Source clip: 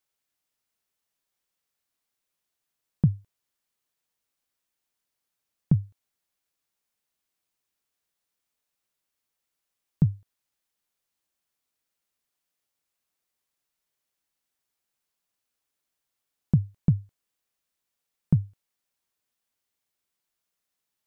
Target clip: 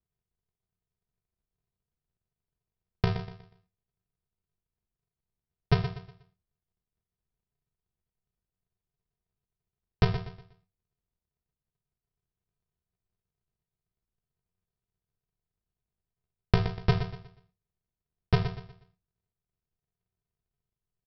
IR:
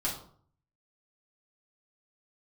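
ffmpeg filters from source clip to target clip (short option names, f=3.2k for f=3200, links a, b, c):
-filter_complex "[0:a]aeval=exprs='val(0)+0.5*0.0178*sgn(val(0))':c=same,agate=range=-46dB:threshold=-28dB:ratio=16:detection=peak,bass=f=250:g=-8,treble=f=4k:g=0,aresample=11025,acrusher=samples=39:mix=1:aa=0.000001,aresample=44100,aecho=1:1:121|242|363|484:0.316|0.104|0.0344|0.0114,asplit=2[a][b];[1:a]atrim=start_sample=2205,atrim=end_sample=4410,adelay=22[c];[b][c]afir=irnorm=-1:irlink=0,volume=-18.5dB[d];[a][d]amix=inputs=2:normalize=0,volume=4dB"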